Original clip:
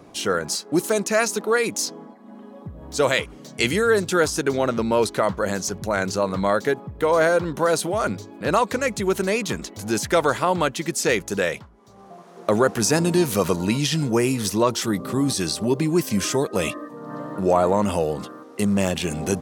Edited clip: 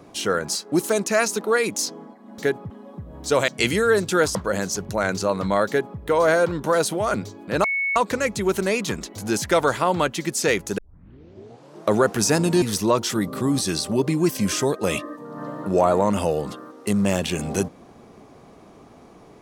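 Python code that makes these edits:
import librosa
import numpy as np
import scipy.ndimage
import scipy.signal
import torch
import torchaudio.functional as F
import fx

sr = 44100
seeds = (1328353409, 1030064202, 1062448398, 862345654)

y = fx.edit(x, sr, fx.cut(start_s=3.16, length_s=0.32),
    fx.cut(start_s=4.35, length_s=0.93),
    fx.duplicate(start_s=6.6, length_s=0.32, to_s=2.38),
    fx.insert_tone(at_s=8.57, length_s=0.32, hz=2210.0, db=-20.5),
    fx.tape_start(start_s=11.39, length_s=1.12),
    fx.cut(start_s=13.23, length_s=1.11), tone=tone)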